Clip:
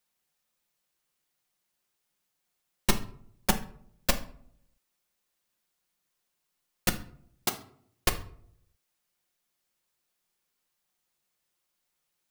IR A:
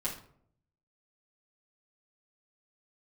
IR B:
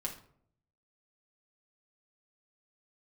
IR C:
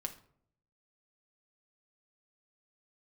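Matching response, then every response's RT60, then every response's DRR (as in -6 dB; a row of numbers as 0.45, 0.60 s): C; 0.60, 0.60, 0.65 s; -9.5, -1.5, 4.0 dB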